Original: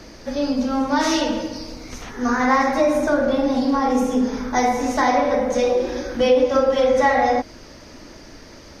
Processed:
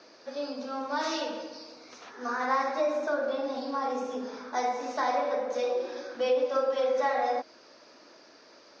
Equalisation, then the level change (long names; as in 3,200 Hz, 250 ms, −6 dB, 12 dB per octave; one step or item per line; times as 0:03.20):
loudspeaker in its box 490–5,200 Hz, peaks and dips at 850 Hz −3 dB, 2,000 Hz −7 dB, 3,100 Hz −5 dB
−7.0 dB